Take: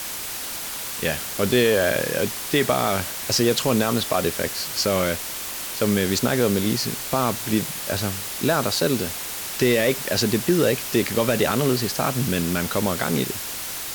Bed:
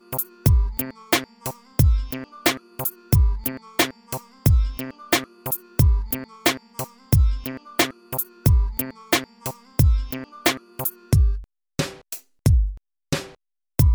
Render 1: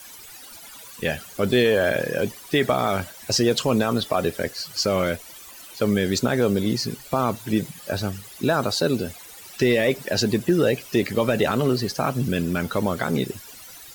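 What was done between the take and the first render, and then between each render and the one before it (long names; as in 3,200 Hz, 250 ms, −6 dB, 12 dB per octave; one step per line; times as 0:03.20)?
broadband denoise 16 dB, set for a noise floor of −31 dBFS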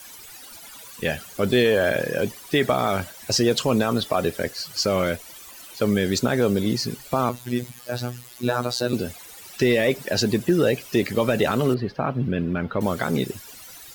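0:07.29–0:08.93: phases set to zero 122 Hz
0:11.74–0:12.81: high-frequency loss of the air 390 metres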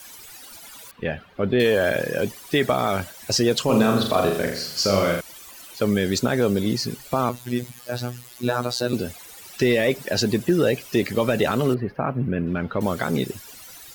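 0:00.91–0:01.60: high-frequency loss of the air 400 metres
0:03.65–0:05.21: flutter between parallel walls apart 7 metres, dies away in 0.62 s
0:11.75–0:12.47: flat-topped bell 5,200 Hz −13 dB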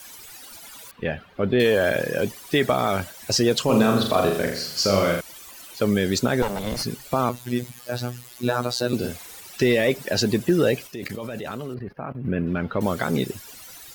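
0:06.42–0:06.83: lower of the sound and its delayed copy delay 1.4 ms
0:08.97–0:09.41: double-tracking delay 49 ms −4 dB
0:10.87–0:12.25: output level in coarse steps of 16 dB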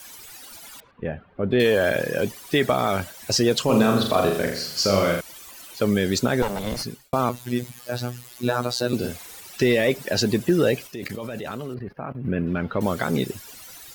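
0:00.80–0:01.51: head-to-tape spacing loss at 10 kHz 43 dB
0:06.72–0:07.13: fade out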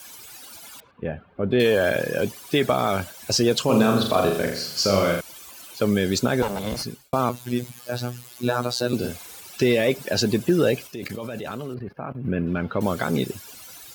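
high-pass filter 45 Hz
notch filter 1,900 Hz, Q 12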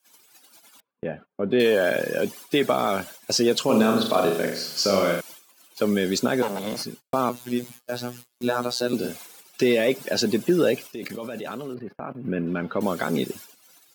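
Chebyshev high-pass filter 220 Hz, order 2
noise gate −41 dBFS, range −28 dB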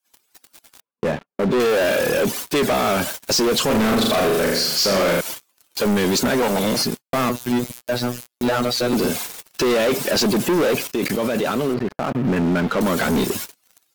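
leveller curve on the samples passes 5
brickwall limiter −15 dBFS, peak gain reduction 8 dB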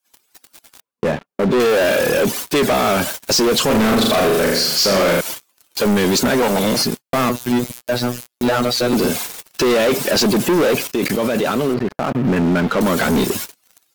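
level +3 dB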